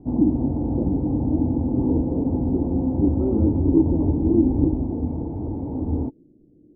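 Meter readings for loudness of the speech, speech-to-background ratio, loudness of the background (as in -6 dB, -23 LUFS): -27.5 LUFS, -4.5 dB, -23.0 LUFS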